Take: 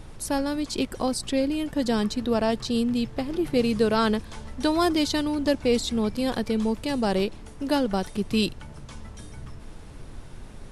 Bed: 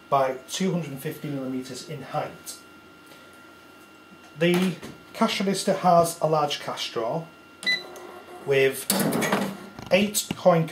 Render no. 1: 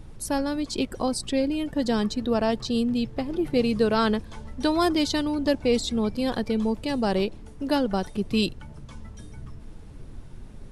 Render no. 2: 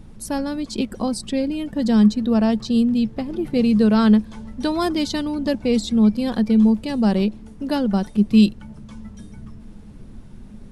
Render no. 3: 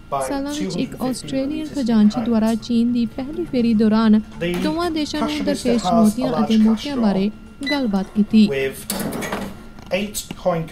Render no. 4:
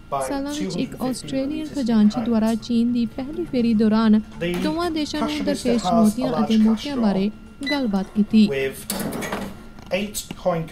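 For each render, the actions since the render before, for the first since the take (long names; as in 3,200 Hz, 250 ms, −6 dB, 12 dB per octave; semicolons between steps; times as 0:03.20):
broadband denoise 7 dB, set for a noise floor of −43 dBFS
parametric band 210 Hz +13.5 dB 0.35 octaves
mix in bed −1.5 dB
level −2 dB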